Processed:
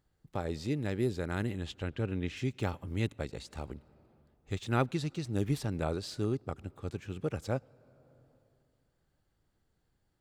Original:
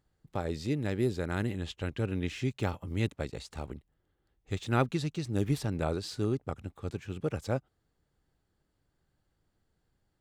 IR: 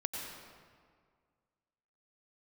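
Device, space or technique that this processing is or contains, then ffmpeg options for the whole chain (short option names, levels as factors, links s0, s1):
compressed reverb return: -filter_complex "[0:a]asplit=2[s0][s1];[1:a]atrim=start_sample=2205[s2];[s1][s2]afir=irnorm=-1:irlink=0,acompressor=threshold=0.00708:ratio=10,volume=0.237[s3];[s0][s3]amix=inputs=2:normalize=0,asettb=1/sr,asplit=3[s4][s5][s6];[s4]atrim=end=1.824[s7];[s5]atrim=start=1.82:end=2.37,asetpts=PTS-STARTPTS,afade=t=in:d=0.004:c=qsin,afade=t=out:st=0.546:d=0.004:c=qsin,highshelf=f=6800:g=-9.5[s8];[s6]atrim=start=2.366[s9];[s7][s8]acrossfade=d=0.004:c1=hsin:c2=qsin[s10];[s10][s9]acrossfade=d=0.004:c1=qsin:c2=hsin,volume=0.794"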